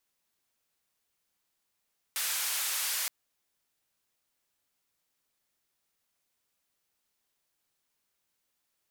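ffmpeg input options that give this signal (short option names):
-f lavfi -i "anoisesrc=c=white:d=0.92:r=44100:seed=1,highpass=f=1100,lowpass=f=15000,volume=-25.1dB"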